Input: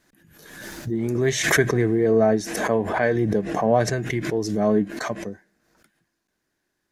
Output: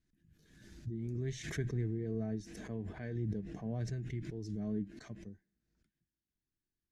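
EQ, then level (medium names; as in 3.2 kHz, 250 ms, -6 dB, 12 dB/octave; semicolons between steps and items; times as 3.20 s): distance through air 62 m; amplifier tone stack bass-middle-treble 10-0-1; peaking EQ 540 Hz -6.5 dB 0.23 oct; +2.0 dB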